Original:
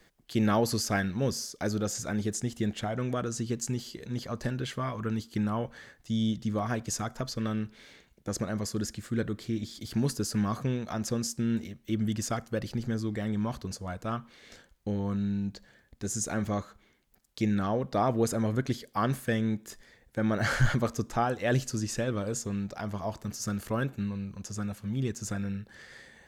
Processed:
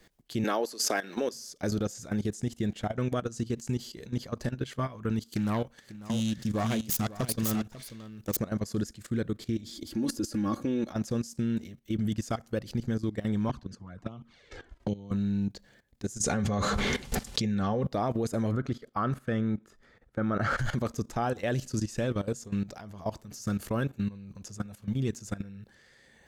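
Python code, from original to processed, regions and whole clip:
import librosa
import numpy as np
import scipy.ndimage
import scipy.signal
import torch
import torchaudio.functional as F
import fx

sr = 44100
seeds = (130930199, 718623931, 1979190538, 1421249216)

y = fx.chain(x, sr, fx.highpass(hz=310.0, slope=24),
    fx.pre_swell(db_per_s=45.0), at=(0.44, 1.34))
y = fx.chain(y, sr, fx.self_delay(depth_ms=0.21),
    fx.high_shelf(hz=4400.0, db=8.5),
    fx.echo_single(ms=544, db=-5.5), at=(5.26, 8.37))
y = fx.chain(y, sr, fx.peak_eq(hz=340.0, db=10.5, octaves=0.62),
    fx.comb(ms=3.6, depth=0.7), at=(9.72, 10.92))
y = fx.chain(y, sr, fx.env_flanger(rest_ms=3.5, full_db=-29.5),
    fx.air_absorb(metres=62.0),
    fx.band_squash(depth_pct=100), at=(13.49, 15.11))
y = fx.chain(y, sr, fx.lowpass(hz=7900.0, slope=12),
    fx.notch_comb(f0_hz=320.0),
    fx.env_flatten(amount_pct=100), at=(16.23, 17.87))
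y = fx.chain(y, sr, fx.lowpass(hz=1800.0, slope=6),
    fx.peak_eq(hz=1300.0, db=13.5, octaves=0.24), at=(18.51, 20.58))
y = fx.peak_eq(y, sr, hz=1400.0, db=-3.0, octaves=1.7)
y = fx.level_steps(y, sr, step_db=16)
y = F.gain(torch.from_numpy(y), 4.0).numpy()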